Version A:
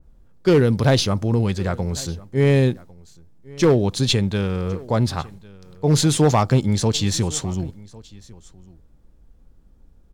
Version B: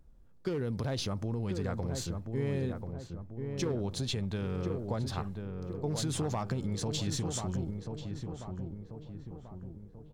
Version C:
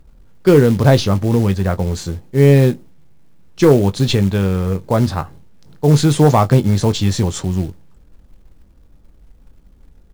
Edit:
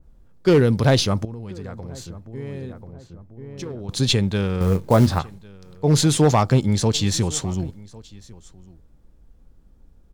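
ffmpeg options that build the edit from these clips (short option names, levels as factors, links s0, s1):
-filter_complex "[0:a]asplit=3[s0][s1][s2];[s0]atrim=end=1.252[s3];[1:a]atrim=start=1.248:end=3.892[s4];[s1]atrim=start=3.888:end=4.612[s5];[2:a]atrim=start=4.608:end=5.192[s6];[s2]atrim=start=5.188[s7];[s3][s4]acrossfade=d=0.004:c1=hsin:c2=hsin[s8];[s8][s5]acrossfade=d=0.004:c1=hsin:c2=hsin[s9];[s9][s6]acrossfade=d=0.004:c1=hsin:c2=hsin[s10];[s10][s7]acrossfade=d=0.004:c1=hsin:c2=hsin"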